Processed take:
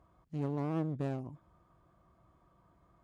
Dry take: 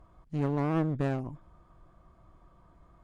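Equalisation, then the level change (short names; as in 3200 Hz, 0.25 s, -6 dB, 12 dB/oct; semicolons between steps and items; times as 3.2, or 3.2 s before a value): dynamic EQ 1700 Hz, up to -6 dB, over -52 dBFS, Q 1.1; HPF 69 Hz 12 dB/oct; -5.5 dB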